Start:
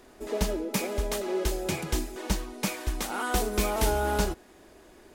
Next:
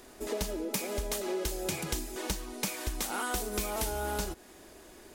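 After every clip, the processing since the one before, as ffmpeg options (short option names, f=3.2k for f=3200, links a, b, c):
-af "highshelf=f=4.2k:g=8,acompressor=threshold=-30dB:ratio=6"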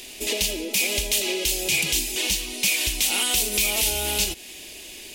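-af "highshelf=f=1.9k:t=q:w=3:g=11.5,alimiter=limit=-15dB:level=0:latency=1:release=25,volume=4.5dB"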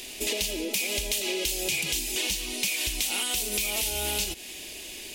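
-af "acompressor=threshold=-25dB:ratio=6"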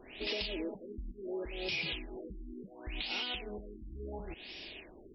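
-af "asoftclip=type=tanh:threshold=-21.5dB,afftfilt=real='re*lt(b*sr/1024,340*pow(5800/340,0.5+0.5*sin(2*PI*0.71*pts/sr)))':imag='im*lt(b*sr/1024,340*pow(5800/340,0.5+0.5*sin(2*PI*0.71*pts/sr)))':win_size=1024:overlap=0.75,volume=-4.5dB"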